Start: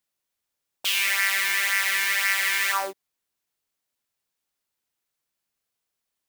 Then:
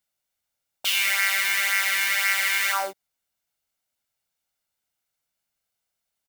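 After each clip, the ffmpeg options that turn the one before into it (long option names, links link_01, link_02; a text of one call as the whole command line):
ffmpeg -i in.wav -af "aecho=1:1:1.4:0.39" out.wav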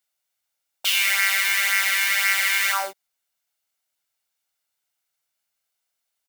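ffmpeg -i in.wav -af "lowshelf=frequency=420:gain=-11,volume=2.5dB" out.wav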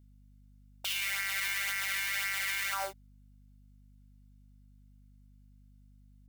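ffmpeg -i in.wav -af "alimiter=limit=-16.5dB:level=0:latency=1:release=32,aeval=exprs='val(0)+0.00282*(sin(2*PI*50*n/s)+sin(2*PI*2*50*n/s)/2+sin(2*PI*3*50*n/s)/3+sin(2*PI*4*50*n/s)/4+sin(2*PI*5*50*n/s)/5)':channel_layout=same,volume=-6.5dB" out.wav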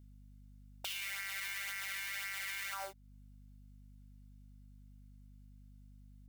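ffmpeg -i in.wav -af "acompressor=threshold=-47dB:ratio=2,volume=1.5dB" out.wav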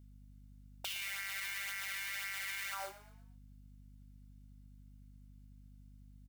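ffmpeg -i in.wav -filter_complex "[0:a]asplit=5[link_01][link_02][link_03][link_04][link_05];[link_02]adelay=116,afreqshift=36,volume=-15dB[link_06];[link_03]adelay=232,afreqshift=72,volume=-23dB[link_07];[link_04]adelay=348,afreqshift=108,volume=-30.9dB[link_08];[link_05]adelay=464,afreqshift=144,volume=-38.9dB[link_09];[link_01][link_06][link_07][link_08][link_09]amix=inputs=5:normalize=0" out.wav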